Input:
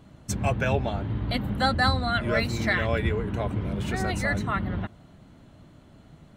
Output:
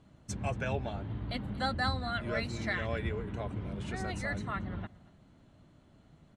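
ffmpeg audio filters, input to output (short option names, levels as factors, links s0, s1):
-filter_complex "[0:a]lowpass=f=10000:w=0.5412,lowpass=f=10000:w=1.3066,asplit=2[s0][s1];[s1]aecho=0:1:230:0.0841[s2];[s0][s2]amix=inputs=2:normalize=0,volume=0.355"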